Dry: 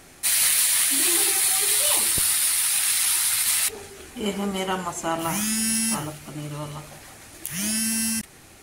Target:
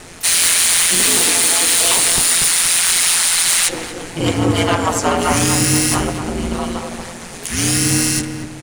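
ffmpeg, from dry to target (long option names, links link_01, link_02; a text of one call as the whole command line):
ffmpeg -i in.wav -filter_complex "[0:a]aeval=exprs='val(0)*sin(2*PI*86*n/s)':channel_layout=same,aresample=22050,aresample=44100,aeval=exprs='0.355*sin(PI/2*3.16*val(0)/0.355)':channel_layout=same,asplit=2[link_01][link_02];[link_02]adelay=237,lowpass=frequency=1200:poles=1,volume=-5dB,asplit=2[link_03][link_04];[link_04]adelay=237,lowpass=frequency=1200:poles=1,volume=0.45,asplit=2[link_05][link_06];[link_06]adelay=237,lowpass=frequency=1200:poles=1,volume=0.45,asplit=2[link_07][link_08];[link_08]adelay=237,lowpass=frequency=1200:poles=1,volume=0.45,asplit=2[link_09][link_10];[link_10]adelay=237,lowpass=frequency=1200:poles=1,volume=0.45,asplit=2[link_11][link_12];[link_12]adelay=237,lowpass=frequency=1200:poles=1,volume=0.45[link_13];[link_03][link_05][link_07][link_09][link_11][link_13]amix=inputs=6:normalize=0[link_14];[link_01][link_14]amix=inputs=2:normalize=0,asplit=3[link_15][link_16][link_17];[link_16]asetrate=33038,aresample=44100,atempo=1.33484,volume=-9dB[link_18];[link_17]asetrate=66075,aresample=44100,atempo=0.66742,volume=-14dB[link_19];[link_15][link_18][link_19]amix=inputs=3:normalize=0" out.wav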